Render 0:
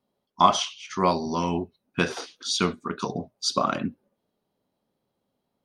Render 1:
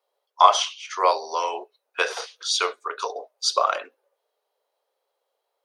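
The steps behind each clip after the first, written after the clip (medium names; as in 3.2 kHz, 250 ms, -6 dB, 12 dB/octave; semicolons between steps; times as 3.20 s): elliptic high-pass 460 Hz, stop band 60 dB; trim +4 dB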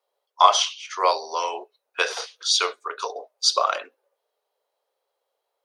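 dynamic bell 4.7 kHz, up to +5 dB, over -36 dBFS, Q 0.79; trim -1 dB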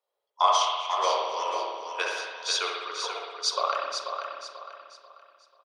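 feedback delay 489 ms, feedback 34%, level -7 dB; spring tank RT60 1.4 s, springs 59 ms, chirp 65 ms, DRR 0 dB; trim -7.5 dB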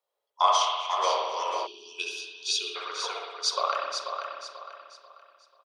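time-frequency box 1.67–2.76 s, 440–2400 Hz -26 dB; bass shelf 290 Hz -4.5 dB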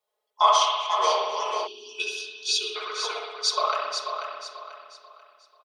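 comb 4.7 ms, depth 99%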